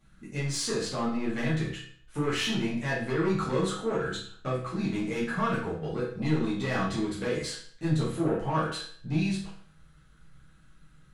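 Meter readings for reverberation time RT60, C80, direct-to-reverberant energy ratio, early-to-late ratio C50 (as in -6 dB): 0.55 s, 8.5 dB, -8.5 dB, 4.0 dB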